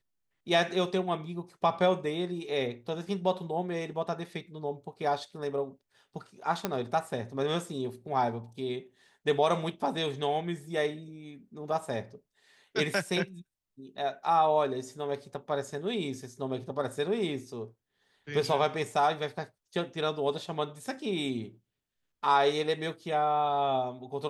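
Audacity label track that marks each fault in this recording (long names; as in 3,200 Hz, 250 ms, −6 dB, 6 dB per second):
6.650000	6.650000	click −13 dBFS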